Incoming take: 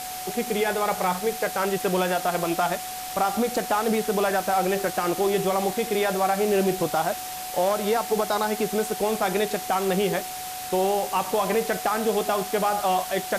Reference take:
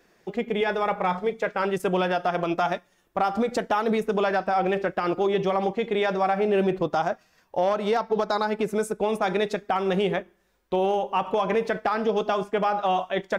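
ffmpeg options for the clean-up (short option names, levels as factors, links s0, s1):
-af "bandreject=f=740:w=30,afftdn=nr=25:nf=-34"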